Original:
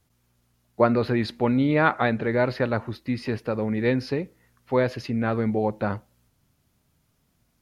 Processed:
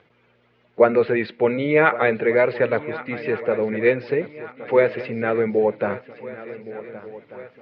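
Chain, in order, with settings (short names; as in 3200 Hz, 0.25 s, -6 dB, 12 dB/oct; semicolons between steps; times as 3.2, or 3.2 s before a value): bin magnitudes rounded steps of 15 dB; gate with hold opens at -46 dBFS; upward compressor, threshold -34 dBFS; speaker cabinet 220–3100 Hz, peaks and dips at 260 Hz -10 dB, 460 Hz +6 dB, 780 Hz -4 dB, 1100 Hz -4 dB, 2200 Hz +5 dB; on a send: swung echo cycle 1.491 s, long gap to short 3:1, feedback 45%, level -16 dB; on the sum: gain +5 dB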